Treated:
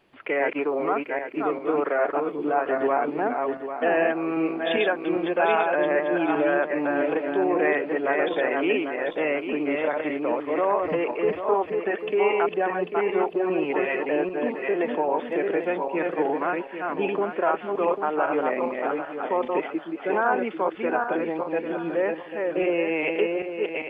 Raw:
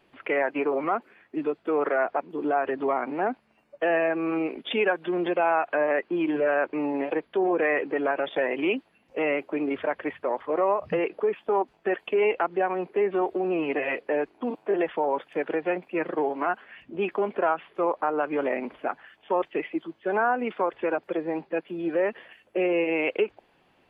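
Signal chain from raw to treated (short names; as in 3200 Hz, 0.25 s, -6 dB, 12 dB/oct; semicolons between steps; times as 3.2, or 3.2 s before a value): regenerating reverse delay 0.397 s, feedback 51%, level -3 dB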